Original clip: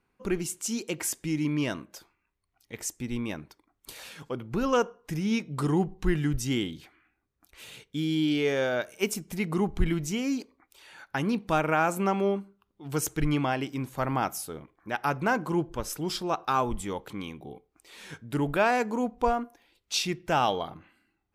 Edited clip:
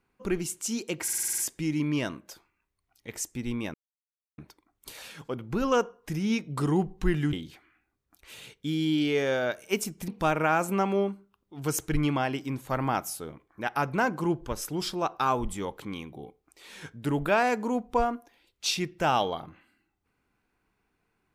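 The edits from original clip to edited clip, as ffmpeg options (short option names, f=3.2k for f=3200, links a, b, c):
-filter_complex "[0:a]asplit=11[a][b][c][d][e][f][g][h][i][j][k];[a]atrim=end=1.082[l];[b]atrim=start=1.028:end=1.082[m];[c]atrim=start=1.028:end=1.082[n];[d]atrim=start=1.028:end=1.082[o];[e]atrim=start=1.028:end=1.082[p];[f]atrim=start=1.028:end=1.082[q];[g]atrim=start=1.028:end=1.082[r];[h]atrim=start=1.028:end=3.39,asetpts=PTS-STARTPTS,afade=t=out:st=2.358:d=0.004:c=hsin,apad=pad_dur=0.64[s];[i]atrim=start=3.39:end=6.342,asetpts=PTS-STARTPTS,afade=t=in:d=0.004:c=hsin[t];[j]atrim=start=6.628:end=9.382[u];[k]atrim=start=11.358[v];[l][m]acrossfade=d=0.004:c1=hsin:c2=hsin[w];[w][n]acrossfade=d=0.004:c1=hsin:c2=hsin[x];[x][o]acrossfade=d=0.004:c1=hsin:c2=hsin[y];[y][p]acrossfade=d=0.004:c1=hsin:c2=hsin[z];[z][q]acrossfade=d=0.004:c1=hsin:c2=hsin[aa];[aa][r]acrossfade=d=0.004:c1=hsin:c2=hsin[ab];[s][t]concat=n=2:v=0:a=1[ac];[ab][ac]acrossfade=d=0.004:c1=hsin:c2=hsin[ad];[ad][u]acrossfade=d=0.004:c1=hsin:c2=hsin[ae];[ae][v]acrossfade=d=0.004:c1=hsin:c2=hsin"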